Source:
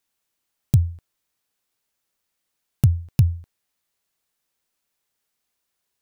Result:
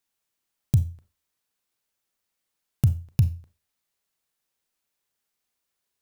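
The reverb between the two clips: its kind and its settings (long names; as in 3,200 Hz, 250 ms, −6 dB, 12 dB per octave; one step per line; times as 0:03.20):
four-comb reverb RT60 0.3 s, combs from 29 ms, DRR 11.5 dB
level −3.5 dB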